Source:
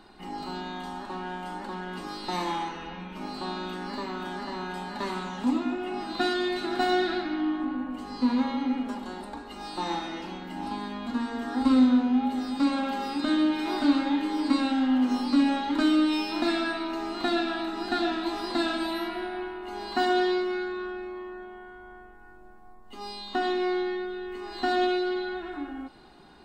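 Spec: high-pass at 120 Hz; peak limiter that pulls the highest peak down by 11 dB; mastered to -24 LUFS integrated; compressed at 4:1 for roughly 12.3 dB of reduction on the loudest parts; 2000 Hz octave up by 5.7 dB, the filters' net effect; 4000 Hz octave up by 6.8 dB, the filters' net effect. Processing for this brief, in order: HPF 120 Hz; bell 2000 Hz +6.5 dB; bell 4000 Hz +6 dB; compressor 4:1, threshold -32 dBFS; gain +14 dB; limiter -16 dBFS

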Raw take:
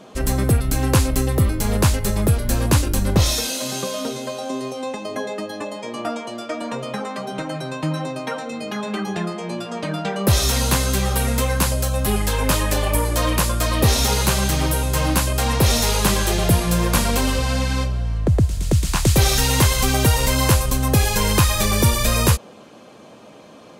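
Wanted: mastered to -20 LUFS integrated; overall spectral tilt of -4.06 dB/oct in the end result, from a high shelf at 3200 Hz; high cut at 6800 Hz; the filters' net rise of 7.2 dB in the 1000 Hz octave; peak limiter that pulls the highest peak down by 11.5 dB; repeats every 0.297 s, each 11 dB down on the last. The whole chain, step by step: LPF 6800 Hz; bell 1000 Hz +8 dB; high shelf 3200 Hz +5.5 dB; limiter -12 dBFS; feedback echo 0.297 s, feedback 28%, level -11 dB; gain +2 dB

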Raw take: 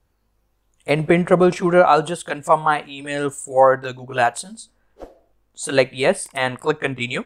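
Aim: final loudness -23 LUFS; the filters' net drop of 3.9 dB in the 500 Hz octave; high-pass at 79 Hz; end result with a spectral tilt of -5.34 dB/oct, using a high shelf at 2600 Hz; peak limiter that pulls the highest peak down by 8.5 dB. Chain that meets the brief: HPF 79 Hz; bell 500 Hz -4.5 dB; high shelf 2600 Hz -5.5 dB; gain +2.5 dB; limiter -10.5 dBFS

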